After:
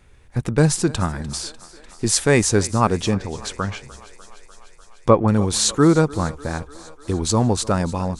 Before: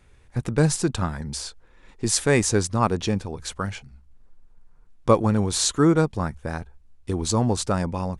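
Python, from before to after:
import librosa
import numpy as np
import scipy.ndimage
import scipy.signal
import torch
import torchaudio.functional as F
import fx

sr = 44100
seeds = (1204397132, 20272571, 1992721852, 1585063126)

y = fx.echo_thinned(x, sr, ms=298, feedback_pct=74, hz=270.0, wet_db=-19)
y = fx.env_lowpass_down(y, sr, base_hz=2200.0, full_db=-18.0, at=(3.13, 5.28))
y = F.gain(torch.from_numpy(y), 3.5).numpy()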